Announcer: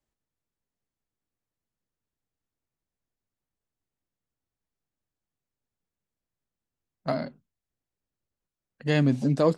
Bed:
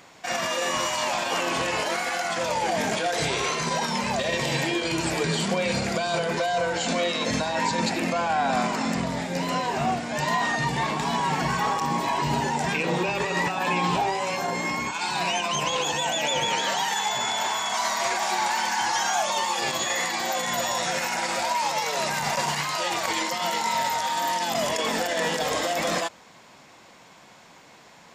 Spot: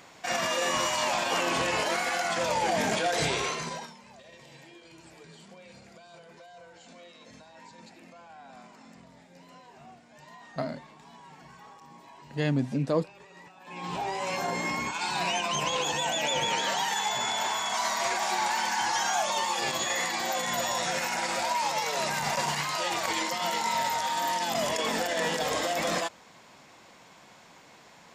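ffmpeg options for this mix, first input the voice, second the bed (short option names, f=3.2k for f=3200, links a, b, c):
-filter_complex "[0:a]adelay=3500,volume=-4.5dB[a];[1:a]volume=21dB,afade=t=out:st=3.26:d=0.69:silence=0.0630957,afade=t=in:st=13.65:d=0.71:silence=0.0749894[b];[a][b]amix=inputs=2:normalize=0"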